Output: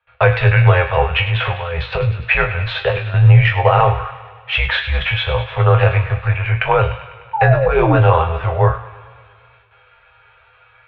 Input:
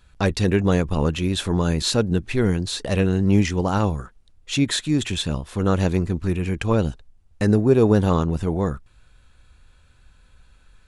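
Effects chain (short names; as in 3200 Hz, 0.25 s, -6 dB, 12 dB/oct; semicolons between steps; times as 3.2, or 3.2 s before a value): HPF 130 Hz 12 dB/oct; gate with hold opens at -52 dBFS; elliptic band-stop 200–560 Hz, stop band 40 dB; 1.03–3.14 negative-ratio compressor -28 dBFS, ratio -0.5; 7.33–7.96 painted sound fall 350–1000 Hz -32 dBFS; resonator bank G2 major, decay 0.23 s; mistuned SSB -82 Hz 170–2900 Hz; thin delay 0.1 s, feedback 66%, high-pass 1500 Hz, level -11 dB; maximiser +27 dB; warbling echo 0.113 s, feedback 69%, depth 141 cents, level -23.5 dB; gain -1 dB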